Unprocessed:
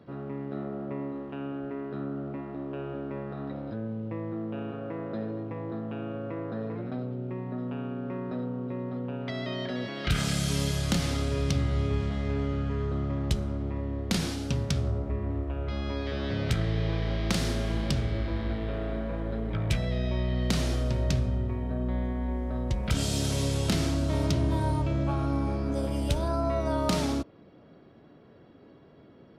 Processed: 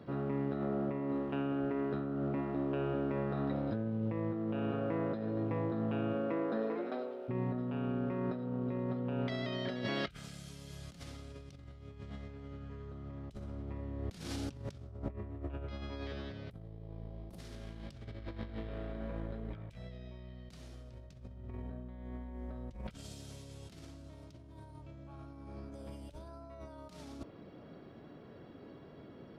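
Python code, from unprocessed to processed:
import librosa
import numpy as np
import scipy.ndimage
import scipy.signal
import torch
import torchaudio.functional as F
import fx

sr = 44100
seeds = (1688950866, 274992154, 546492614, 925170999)

y = fx.highpass(x, sr, hz=fx.line((6.13, 140.0), (7.28, 470.0)), slope=24, at=(6.13, 7.28), fade=0.02)
y = fx.band_shelf(y, sr, hz=3200.0, db=-15.0, octaves=2.9, at=(16.49, 17.38), fade=0.02)
y = fx.over_compress(y, sr, threshold_db=-35.0, ratio=-0.5)
y = y * librosa.db_to_amplitude(-4.0)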